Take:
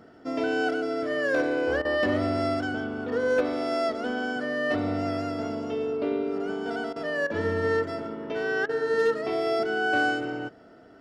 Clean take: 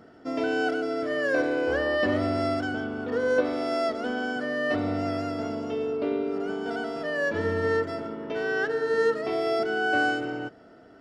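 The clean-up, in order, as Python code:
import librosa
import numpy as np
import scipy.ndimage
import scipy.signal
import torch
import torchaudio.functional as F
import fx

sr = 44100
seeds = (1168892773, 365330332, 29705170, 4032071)

y = fx.fix_declip(x, sr, threshold_db=-16.5)
y = fx.fix_interpolate(y, sr, at_s=(1.82, 6.93, 7.27, 8.66), length_ms=29.0)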